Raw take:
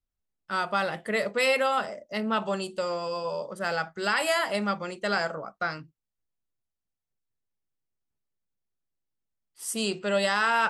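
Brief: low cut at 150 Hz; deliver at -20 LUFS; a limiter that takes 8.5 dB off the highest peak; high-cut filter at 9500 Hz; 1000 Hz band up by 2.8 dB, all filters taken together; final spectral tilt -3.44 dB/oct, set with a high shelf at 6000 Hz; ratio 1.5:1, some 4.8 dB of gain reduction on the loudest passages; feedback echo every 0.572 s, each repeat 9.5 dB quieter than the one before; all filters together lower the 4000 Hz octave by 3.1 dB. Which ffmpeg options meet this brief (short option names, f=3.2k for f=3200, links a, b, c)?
-af "highpass=150,lowpass=9.5k,equalizer=f=1k:t=o:g=4,equalizer=f=4k:t=o:g=-6,highshelf=f=6k:g=4.5,acompressor=threshold=-32dB:ratio=1.5,alimiter=limit=-23.5dB:level=0:latency=1,aecho=1:1:572|1144|1716|2288:0.335|0.111|0.0365|0.012,volume=13.5dB"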